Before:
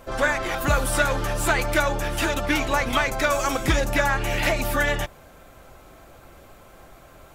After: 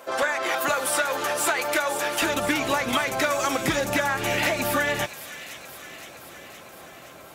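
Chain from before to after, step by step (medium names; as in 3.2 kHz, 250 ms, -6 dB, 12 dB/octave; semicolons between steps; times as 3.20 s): high-pass 410 Hz 12 dB/octave, from 2.22 s 150 Hz; compression 8:1, threshold -24 dBFS, peak gain reduction 8.5 dB; wavefolder -16.5 dBFS; feedback echo behind a high-pass 518 ms, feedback 66%, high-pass 2.4 kHz, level -10 dB; trim +4 dB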